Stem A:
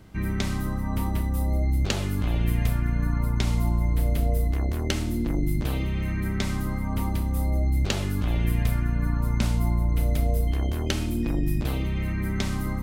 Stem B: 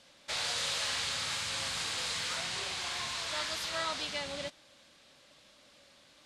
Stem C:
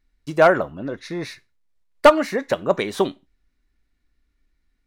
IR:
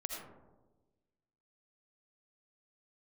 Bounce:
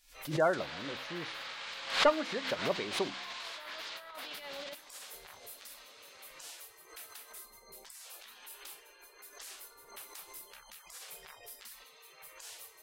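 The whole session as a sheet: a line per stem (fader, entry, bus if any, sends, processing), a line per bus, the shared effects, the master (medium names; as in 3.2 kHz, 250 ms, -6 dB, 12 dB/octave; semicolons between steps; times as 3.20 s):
-6.0 dB, 0.00 s, bus A, no send, high-pass 440 Hz 6 dB/octave; spectral gate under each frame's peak -20 dB weak; auto duck -12 dB, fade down 0.25 s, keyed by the third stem
-0.5 dB, 0.25 s, bus A, no send, low-pass that closes with the level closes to 2.6 kHz, closed at -30.5 dBFS; high-pass 340 Hz 12 dB/octave
-14.0 dB, 0.00 s, no bus, no send, spectral gate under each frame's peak -25 dB strong
bus A: 0.0 dB, compressor with a negative ratio -41 dBFS, ratio -0.5; peak limiter -33.5 dBFS, peak gain reduction 9.5 dB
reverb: none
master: de-hum 64.92 Hz, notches 5; swell ahead of each attack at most 110 dB/s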